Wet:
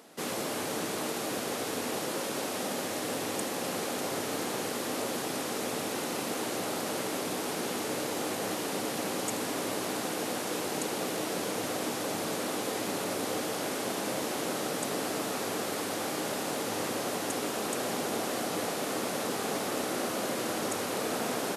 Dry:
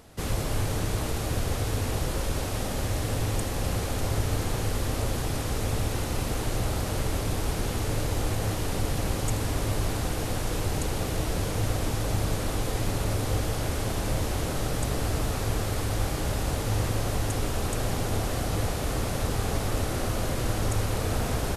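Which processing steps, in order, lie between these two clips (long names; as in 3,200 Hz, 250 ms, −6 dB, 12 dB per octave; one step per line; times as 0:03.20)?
high-pass filter 210 Hz 24 dB per octave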